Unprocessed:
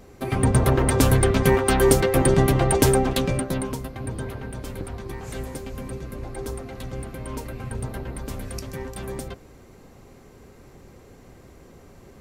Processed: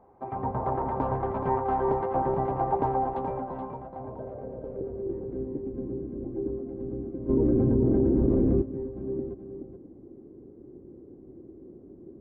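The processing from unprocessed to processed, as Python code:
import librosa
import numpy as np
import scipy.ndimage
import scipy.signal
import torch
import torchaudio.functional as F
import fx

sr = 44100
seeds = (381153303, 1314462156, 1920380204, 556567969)

y = fx.tilt_eq(x, sr, slope=-3.5)
y = fx.filter_sweep_bandpass(y, sr, from_hz=880.0, to_hz=330.0, start_s=3.67, end_s=5.29, q=4.7)
y = fx.spacing_loss(y, sr, db_at_10k=27)
y = y + 10.0 ** (-8.0 / 20.0) * np.pad(y, (int(425 * sr / 1000.0), 0))[:len(y)]
y = fx.env_flatten(y, sr, amount_pct=100, at=(7.28, 8.61), fade=0.02)
y = y * librosa.db_to_amplitude(4.5)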